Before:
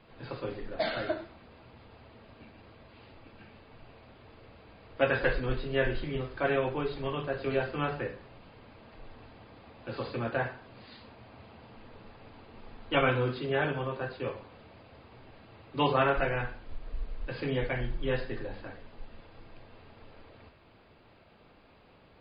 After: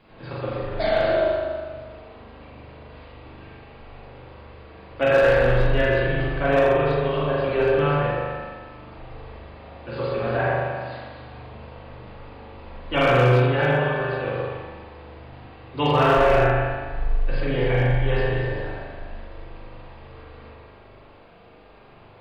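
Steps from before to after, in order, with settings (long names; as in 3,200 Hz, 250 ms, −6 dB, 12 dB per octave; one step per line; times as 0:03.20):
delay that swaps between a low-pass and a high-pass 122 ms, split 1,300 Hz, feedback 51%, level −3 dB
spring reverb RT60 1.3 s, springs 40 ms, chirp 35 ms, DRR −4 dB
hard clipping −13.5 dBFS, distortion −23 dB
level +2.5 dB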